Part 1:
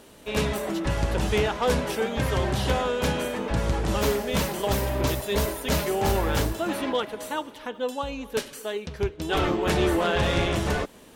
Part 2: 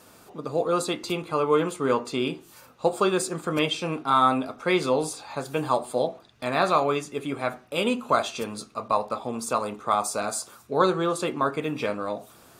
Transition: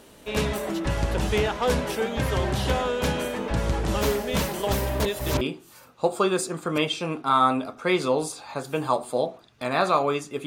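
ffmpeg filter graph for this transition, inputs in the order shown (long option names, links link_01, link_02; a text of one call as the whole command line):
ffmpeg -i cue0.wav -i cue1.wav -filter_complex "[0:a]apad=whole_dur=10.46,atrim=end=10.46,asplit=2[link_01][link_02];[link_01]atrim=end=5.002[link_03];[link_02]atrim=start=4.998:end=5.412,asetpts=PTS-STARTPTS,areverse[link_04];[1:a]atrim=start=2.218:end=7.27[link_05];[link_03][link_04]acrossfade=duration=0.004:curve1=hsin:curve2=hsin[link_06];[link_06][link_05]acrossfade=duration=0.004:curve1=hsin:curve2=hsin" out.wav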